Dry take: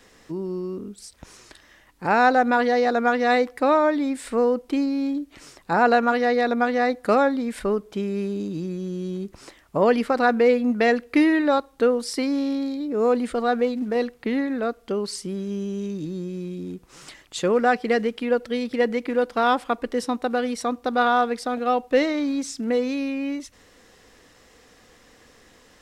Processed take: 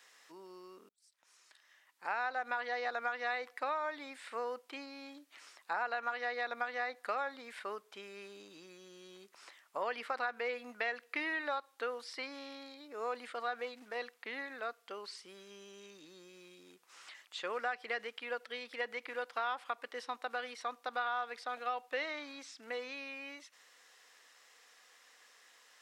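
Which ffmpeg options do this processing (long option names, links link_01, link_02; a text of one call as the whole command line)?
ffmpeg -i in.wav -filter_complex "[0:a]asplit=2[link_01][link_02];[link_01]atrim=end=0.89,asetpts=PTS-STARTPTS,afade=type=out:start_time=0.886:duration=0.004:curve=hsin[link_03];[link_02]atrim=start=0.89,asetpts=PTS-STARTPTS,afade=type=in:duration=1.62[link_04];[link_03][link_04]concat=n=2:v=0:a=1,acrossover=split=4100[link_05][link_06];[link_06]acompressor=threshold=-55dB:ratio=4:attack=1:release=60[link_07];[link_05][link_07]amix=inputs=2:normalize=0,highpass=1000,acompressor=threshold=-26dB:ratio=6,volume=-6dB" out.wav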